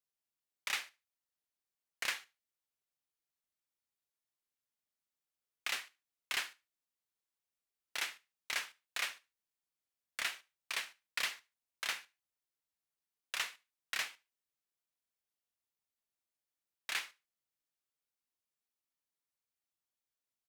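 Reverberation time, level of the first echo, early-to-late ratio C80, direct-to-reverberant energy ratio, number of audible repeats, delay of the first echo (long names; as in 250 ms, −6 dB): no reverb audible, −23.5 dB, no reverb audible, no reverb audible, 1, 73 ms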